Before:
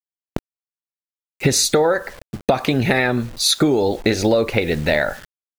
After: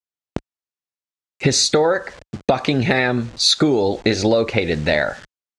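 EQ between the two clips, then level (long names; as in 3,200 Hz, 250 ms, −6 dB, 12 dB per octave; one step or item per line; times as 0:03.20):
high-pass filter 44 Hz
low-pass filter 7,800 Hz 24 dB per octave
dynamic equaliser 4,400 Hz, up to +4 dB, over −37 dBFS, Q 4.1
0.0 dB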